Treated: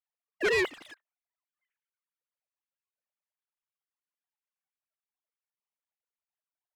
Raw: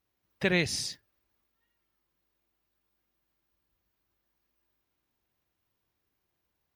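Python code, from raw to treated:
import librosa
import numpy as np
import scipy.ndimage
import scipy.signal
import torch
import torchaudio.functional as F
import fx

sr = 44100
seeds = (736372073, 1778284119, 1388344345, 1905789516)

y = fx.sine_speech(x, sr)
y = fx.leveller(y, sr, passes=3)
y = fx.vibrato_shape(y, sr, shape='saw_down', rate_hz=6.2, depth_cents=250.0)
y = y * 10.0 ** (-6.0 / 20.0)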